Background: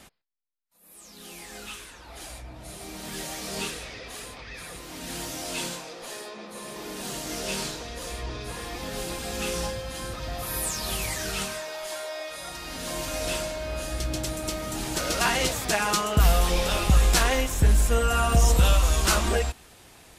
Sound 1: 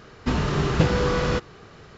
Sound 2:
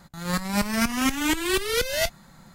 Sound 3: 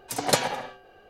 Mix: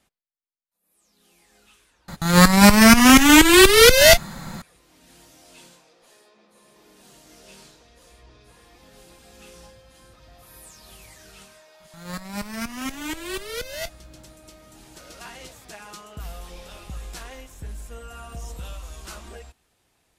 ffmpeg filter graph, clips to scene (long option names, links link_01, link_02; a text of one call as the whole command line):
ffmpeg -i bed.wav -i cue0.wav -i cue1.wav -filter_complex "[2:a]asplit=2[link_01][link_02];[0:a]volume=-17dB[link_03];[link_01]alimiter=level_in=15.5dB:limit=-1dB:release=50:level=0:latency=1,atrim=end=2.54,asetpts=PTS-STARTPTS,volume=-0.5dB,afade=type=in:duration=0.004:curve=hsin,afade=type=out:start_time=2.536:duration=0.004:curve=hsin,adelay=2080[link_04];[link_02]atrim=end=2.54,asetpts=PTS-STARTPTS,volume=-7.5dB,afade=type=in:duration=0.004:curve=hsin,afade=type=out:start_time=2.536:duration=0.004:curve=hsin,adelay=11800[link_05];[link_03][link_04][link_05]amix=inputs=3:normalize=0" out.wav